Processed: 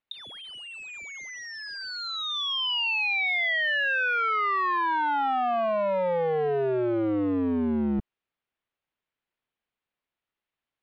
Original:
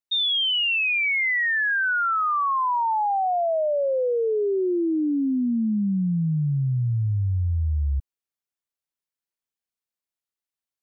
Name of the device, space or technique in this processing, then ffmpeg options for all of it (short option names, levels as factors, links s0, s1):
synthesiser wavefolder: -af "aeval=exprs='0.0398*(abs(mod(val(0)/0.0398+3,4)-2)-1)':c=same,lowpass=f=3300:w=0.5412,lowpass=f=3300:w=1.3066,volume=2.66"